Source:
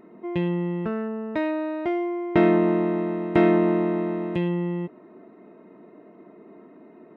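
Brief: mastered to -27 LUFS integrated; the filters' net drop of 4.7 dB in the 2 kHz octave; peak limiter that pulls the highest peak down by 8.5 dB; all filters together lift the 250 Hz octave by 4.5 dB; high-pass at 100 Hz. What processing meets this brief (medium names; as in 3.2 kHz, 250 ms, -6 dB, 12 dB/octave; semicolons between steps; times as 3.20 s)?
high-pass 100 Hz; peaking EQ 250 Hz +7.5 dB; peaking EQ 2 kHz -5.5 dB; trim -4 dB; peak limiter -16.5 dBFS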